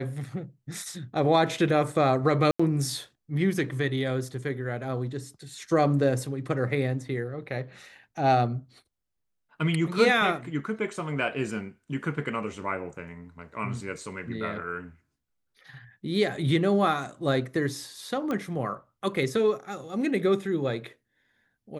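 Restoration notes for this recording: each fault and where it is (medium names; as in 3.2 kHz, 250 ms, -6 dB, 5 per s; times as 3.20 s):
2.51–2.60 s: dropout 85 ms
18.31 s: pop -18 dBFS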